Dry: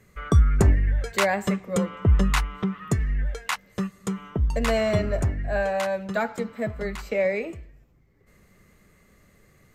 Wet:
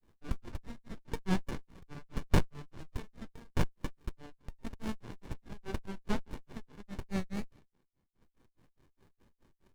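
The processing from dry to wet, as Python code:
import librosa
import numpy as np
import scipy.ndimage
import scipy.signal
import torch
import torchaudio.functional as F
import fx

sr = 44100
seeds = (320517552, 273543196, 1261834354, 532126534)

y = scipy.signal.sosfilt(scipy.signal.butter(12, 870.0, 'highpass', fs=sr, output='sos'), x)
y = fx.granulator(y, sr, seeds[0], grain_ms=169.0, per_s=4.8, spray_ms=100.0, spread_st=0)
y = fx.running_max(y, sr, window=65)
y = y * 10.0 ** (5.0 / 20.0)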